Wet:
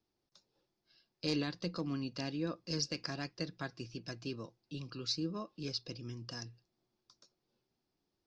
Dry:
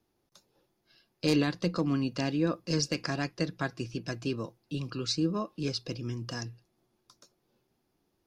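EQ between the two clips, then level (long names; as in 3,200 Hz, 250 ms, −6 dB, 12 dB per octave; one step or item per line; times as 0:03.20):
high-frequency loss of the air 100 metres
parametric band 5,100 Hz +10.5 dB 1.1 octaves
−9.0 dB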